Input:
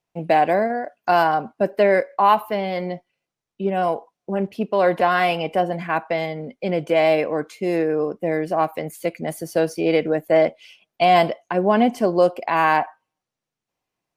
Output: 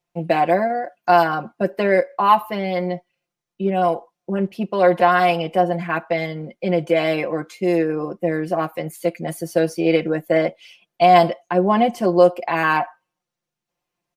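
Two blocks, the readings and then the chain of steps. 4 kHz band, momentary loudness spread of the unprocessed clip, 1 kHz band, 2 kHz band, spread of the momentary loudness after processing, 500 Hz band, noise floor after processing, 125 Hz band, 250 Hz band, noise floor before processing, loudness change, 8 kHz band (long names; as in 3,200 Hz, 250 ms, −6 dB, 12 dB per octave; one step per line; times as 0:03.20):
+0.5 dB, 10 LU, +1.5 dB, +1.0 dB, 10 LU, +1.0 dB, −84 dBFS, +3.5 dB, +2.0 dB, below −85 dBFS, +1.0 dB, can't be measured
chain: comb filter 5.7 ms, depth 73%
level −1 dB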